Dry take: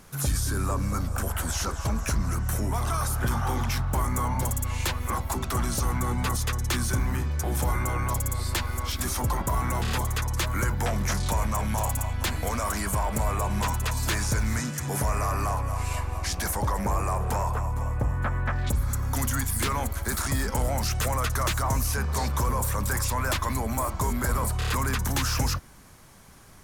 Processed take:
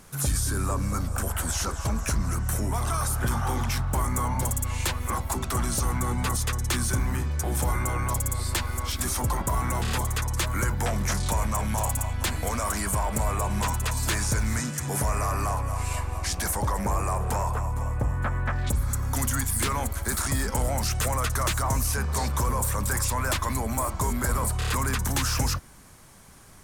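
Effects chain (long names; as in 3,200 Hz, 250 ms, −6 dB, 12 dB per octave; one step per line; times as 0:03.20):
parametric band 8,600 Hz +4.5 dB 0.52 octaves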